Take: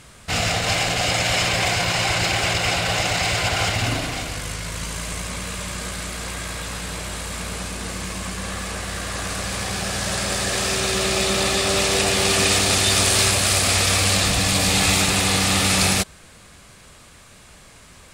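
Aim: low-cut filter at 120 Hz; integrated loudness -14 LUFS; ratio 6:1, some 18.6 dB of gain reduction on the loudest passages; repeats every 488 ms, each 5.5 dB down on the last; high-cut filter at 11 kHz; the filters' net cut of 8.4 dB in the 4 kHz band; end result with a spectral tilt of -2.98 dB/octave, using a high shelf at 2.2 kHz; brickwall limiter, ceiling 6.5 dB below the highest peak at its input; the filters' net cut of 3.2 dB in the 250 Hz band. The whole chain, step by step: high-pass 120 Hz; low-pass 11 kHz; peaking EQ 250 Hz -4 dB; treble shelf 2.2 kHz -4 dB; peaking EQ 4 kHz -7 dB; compression 6:1, threshold -41 dBFS; peak limiter -35 dBFS; feedback delay 488 ms, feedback 53%, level -5.5 dB; trim +28.5 dB

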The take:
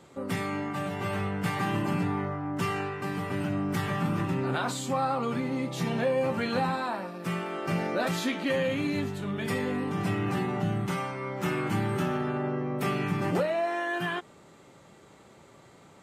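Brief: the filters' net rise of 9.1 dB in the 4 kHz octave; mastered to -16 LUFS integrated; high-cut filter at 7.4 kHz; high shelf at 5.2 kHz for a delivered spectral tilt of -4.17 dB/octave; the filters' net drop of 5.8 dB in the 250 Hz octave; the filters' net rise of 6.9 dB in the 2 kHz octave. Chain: low-pass 7.4 kHz; peaking EQ 250 Hz -8.5 dB; peaking EQ 2 kHz +6 dB; peaking EQ 4 kHz +7.5 dB; treble shelf 5.2 kHz +5.5 dB; trim +12.5 dB

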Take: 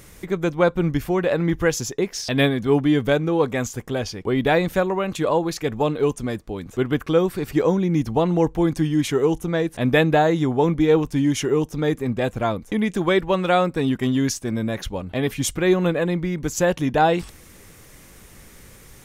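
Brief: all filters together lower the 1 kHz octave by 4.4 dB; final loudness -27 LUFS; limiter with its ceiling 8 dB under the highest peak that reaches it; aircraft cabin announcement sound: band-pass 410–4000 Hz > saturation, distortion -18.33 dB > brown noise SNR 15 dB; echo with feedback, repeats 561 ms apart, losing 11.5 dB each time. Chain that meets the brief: peaking EQ 1 kHz -6 dB; peak limiter -14 dBFS; band-pass 410–4000 Hz; feedback delay 561 ms, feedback 27%, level -11.5 dB; saturation -19.5 dBFS; brown noise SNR 15 dB; trim +3.5 dB

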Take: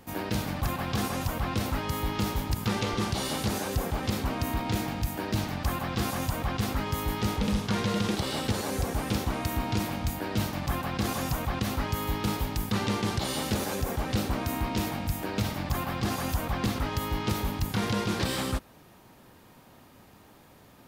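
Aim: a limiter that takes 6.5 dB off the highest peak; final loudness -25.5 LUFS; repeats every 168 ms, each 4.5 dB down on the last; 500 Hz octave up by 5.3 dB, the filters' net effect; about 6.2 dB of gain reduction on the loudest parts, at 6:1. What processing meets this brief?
peaking EQ 500 Hz +6.5 dB; compression 6:1, threshold -29 dBFS; peak limiter -24.5 dBFS; feedback delay 168 ms, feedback 60%, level -4.5 dB; trim +7 dB

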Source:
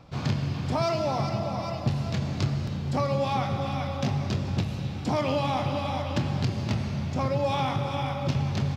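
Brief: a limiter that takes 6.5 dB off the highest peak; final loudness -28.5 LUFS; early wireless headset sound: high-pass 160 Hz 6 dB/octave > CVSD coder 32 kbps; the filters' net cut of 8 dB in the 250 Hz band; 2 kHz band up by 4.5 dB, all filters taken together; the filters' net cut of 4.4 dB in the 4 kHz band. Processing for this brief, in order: peaking EQ 250 Hz -9 dB; peaking EQ 2 kHz +8.5 dB; peaking EQ 4 kHz -9 dB; peak limiter -21 dBFS; high-pass 160 Hz 6 dB/octave; CVSD coder 32 kbps; trim +4.5 dB

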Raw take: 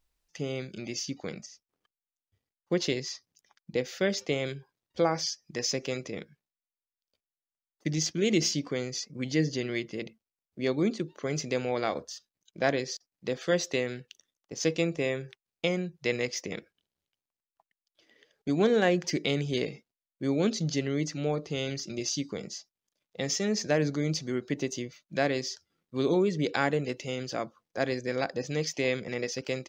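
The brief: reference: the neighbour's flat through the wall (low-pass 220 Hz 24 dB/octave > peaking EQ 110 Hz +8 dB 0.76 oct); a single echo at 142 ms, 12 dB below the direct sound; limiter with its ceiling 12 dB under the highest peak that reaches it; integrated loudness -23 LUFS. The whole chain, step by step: peak limiter -22 dBFS; low-pass 220 Hz 24 dB/octave; peaking EQ 110 Hz +8 dB 0.76 oct; delay 142 ms -12 dB; trim +15.5 dB

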